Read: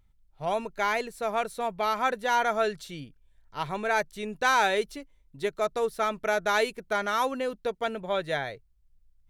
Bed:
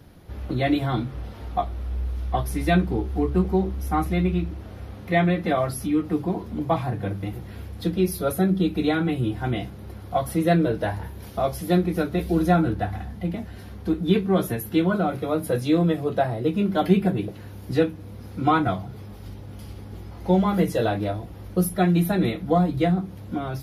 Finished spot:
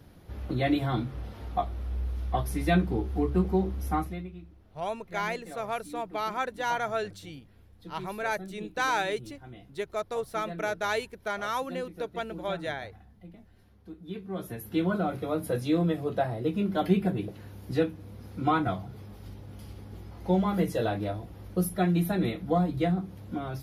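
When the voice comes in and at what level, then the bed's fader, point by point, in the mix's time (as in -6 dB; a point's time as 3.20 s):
4.35 s, -4.5 dB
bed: 3.94 s -4 dB
4.32 s -21 dB
14.00 s -21 dB
14.84 s -5.5 dB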